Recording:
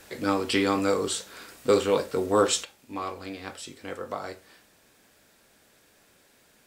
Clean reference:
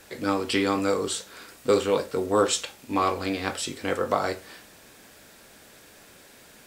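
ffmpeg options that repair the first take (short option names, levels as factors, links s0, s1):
-af "adeclick=t=4,asetnsamples=n=441:p=0,asendcmd='2.64 volume volume 9.5dB',volume=1"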